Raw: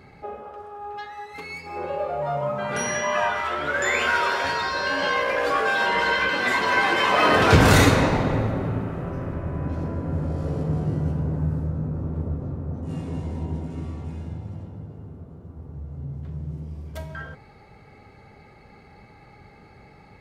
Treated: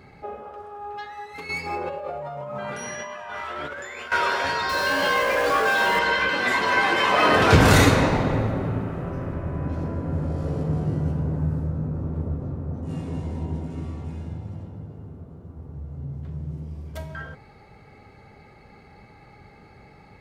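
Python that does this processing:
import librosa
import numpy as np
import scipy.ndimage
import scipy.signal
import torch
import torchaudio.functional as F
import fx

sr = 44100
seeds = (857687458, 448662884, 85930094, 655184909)

y = fx.over_compress(x, sr, threshold_db=-33.0, ratio=-1.0, at=(1.49, 4.12))
y = fx.zero_step(y, sr, step_db=-29.0, at=(4.69, 5.99))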